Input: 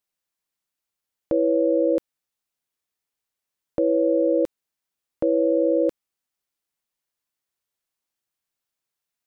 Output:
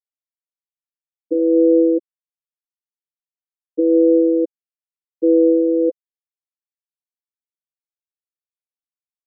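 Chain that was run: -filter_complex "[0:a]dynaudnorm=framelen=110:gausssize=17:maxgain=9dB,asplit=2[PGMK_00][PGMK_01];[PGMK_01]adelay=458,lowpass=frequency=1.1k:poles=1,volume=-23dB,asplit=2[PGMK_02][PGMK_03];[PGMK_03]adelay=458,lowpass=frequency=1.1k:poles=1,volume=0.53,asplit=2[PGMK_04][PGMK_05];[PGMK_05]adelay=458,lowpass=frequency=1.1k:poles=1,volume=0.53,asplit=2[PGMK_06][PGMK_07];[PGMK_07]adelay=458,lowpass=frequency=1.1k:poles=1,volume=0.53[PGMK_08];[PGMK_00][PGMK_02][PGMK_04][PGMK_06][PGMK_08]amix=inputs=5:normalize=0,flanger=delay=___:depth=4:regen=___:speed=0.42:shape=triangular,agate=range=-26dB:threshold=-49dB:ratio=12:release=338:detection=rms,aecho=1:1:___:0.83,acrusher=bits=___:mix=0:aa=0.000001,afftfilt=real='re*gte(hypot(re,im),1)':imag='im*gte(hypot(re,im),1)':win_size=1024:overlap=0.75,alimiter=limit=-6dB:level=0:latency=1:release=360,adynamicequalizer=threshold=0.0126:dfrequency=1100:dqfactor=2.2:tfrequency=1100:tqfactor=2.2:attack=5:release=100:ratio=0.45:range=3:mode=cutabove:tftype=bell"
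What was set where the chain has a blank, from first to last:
9.9, 37, 6.3, 5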